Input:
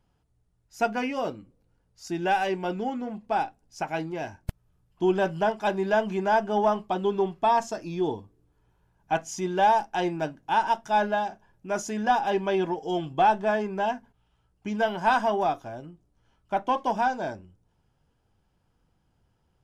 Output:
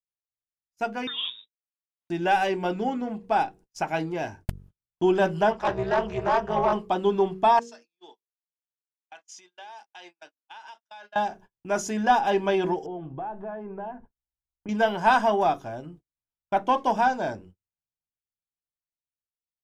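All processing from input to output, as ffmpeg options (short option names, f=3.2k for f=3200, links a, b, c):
-filter_complex "[0:a]asettb=1/sr,asplit=3[a][b][c];[a]atrim=end=1.074[d];[b]atrim=start=1.07:end=2.1,asetpts=PTS-STARTPTS,afade=t=in:d=0.004:c=qsin,afade=t=out:st=1.026:d=0.004:c=qsin,aeval=exprs='sgn(val(0))*max(abs(val(0))-0.00211,0)':c=same,lowpass=f=3.3k:t=q:w=0.5098,lowpass=f=3.3k:t=q:w=0.6013,lowpass=f=3.3k:t=q:w=0.9,lowpass=f=3.3k:t=q:w=2.563,afreqshift=-3900[e];[c]atrim=start=2.096[f];[d][e]acrossfade=d=0.004:c1=hsin:c2=qsin[g];[g][f]acrossfade=d=0.004:c1=qsin:c2=hsin,asettb=1/sr,asplit=3[h][i][j];[h]atrim=end=5.514[k];[i]atrim=start=5.51:end=6.73,asetpts=PTS-STARTPTS,afade=t=in:d=0.004:c=qsin,afade=t=out:st=1.216:d=0.004:c=qsin,asplit=2[l][m];[m]highpass=f=720:p=1,volume=13dB,asoftclip=type=tanh:threshold=-12.5dB[n];[l][n]amix=inputs=2:normalize=0,lowpass=f=1.2k:p=1,volume=-6dB,tremolo=f=260:d=0.947,equalizer=f=5.9k:t=o:w=1.2:g=6[o];[j]atrim=start=6.726[p];[k][o]acrossfade=d=0.004:c1=hsin:c2=qsin[q];[q][p]acrossfade=d=0.004:c1=qsin:c2=hsin,asettb=1/sr,asplit=3[r][s][t];[r]atrim=end=7.594[u];[s]atrim=start=7.59:end=11.16,asetpts=PTS-STARTPTS,afade=t=in:d=0.004:c=qsin,afade=t=out:st=3.566:d=0.004:c=qsin,highpass=230,lowpass=4k,aderivative,acompressor=threshold=-42dB:ratio=12:attack=3.2:release=140:knee=1:detection=peak[v];[t]atrim=start=11.156[w];[u][v]acrossfade=d=0.004:c1=hsin:c2=qsin[x];[x][w]acrossfade=d=0.004:c1=qsin:c2=hsin,asettb=1/sr,asplit=3[y][z][aa];[y]atrim=end=12.864[ab];[z]atrim=start=12.86:end=14.69,asetpts=PTS-STARTPTS,afade=t=in:d=0.004:c=qsin,afade=t=out:st=1.826:d=0.004:c=qsin,asubboost=boost=7:cutoff=78,acompressor=threshold=-36dB:ratio=4:attack=3.2:release=140:knee=1:detection=peak,lowpass=1.2k[ac];[aa]atrim=start=14.686[ad];[ab][ac]acrossfade=d=0.004:c1=hsin:c2=qsin[ae];[ae][ad]acrossfade=d=0.004:c1=qsin:c2=hsin,dynaudnorm=f=260:g=13:m=7dB,bandreject=f=47.01:t=h:w=4,bandreject=f=94.02:t=h:w=4,bandreject=f=141.03:t=h:w=4,bandreject=f=188.04:t=h:w=4,bandreject=f=235.05:t=h:w=4,bandreject=f=282.06:t=h:w=4,bandreject=f=329.07:t=h:w=4,bandreject=f=376.08:t=h:w=4,bandreject=f=423.09:t=h:w=4,bandreject=f=470.1:t=h:w=4,agate=range=-38dB:threshold=-43dB:ratio=16:detection=peak,volume=-4dB"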